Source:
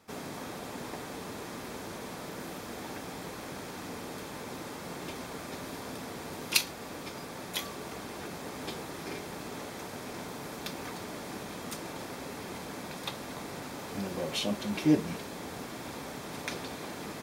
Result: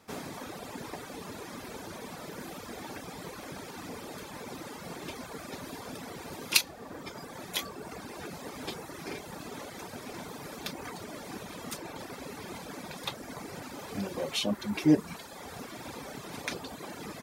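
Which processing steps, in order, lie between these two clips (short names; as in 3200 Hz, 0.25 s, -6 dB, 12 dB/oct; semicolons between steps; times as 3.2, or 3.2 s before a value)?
reverb removal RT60 1.5 s; gain +2 dB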